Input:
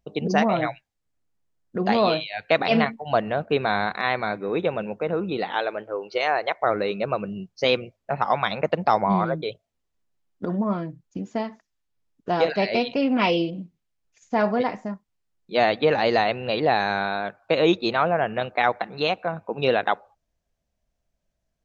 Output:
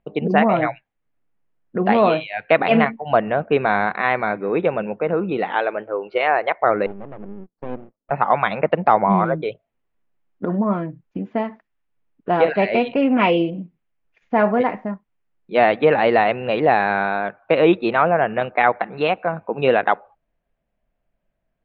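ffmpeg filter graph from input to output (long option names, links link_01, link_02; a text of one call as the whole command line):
ffmpeg -i in.wav -filter_complex "[0:a]asettb=1/sr,asplit=3[link_01][link_02][link_03];[link_01]atrim=end=6.864[link_04];[link_02]atrim=start=6.86:end=8.11,asetpts=PTS-STARTPTS,afade=type=in:duration=0.004:curve=qsin,afade=type=out:start_time=1.246:duration=0.004:curve=qsin,bandpass=frequency=250:width_type=q:width=2.2,aeval=exprs='max(val(0),0)':channel_layout=same[link_05];[link_03]atrim=start=8.106[link_06];[link_04][link_05]acrossfade=duration=0.004:curve1=hsin:curve2=qsin[link_07];[link_07][link_06]acrossfade=duration=0.004:curve1=qsin:curve2=hsin,lowpass=frequency=2700:width=0.5412,lowpass=frequency=2700:width=1.3066,equalizer=frequency=73:width=1.5:gain=-10,volume=5dB" out.wav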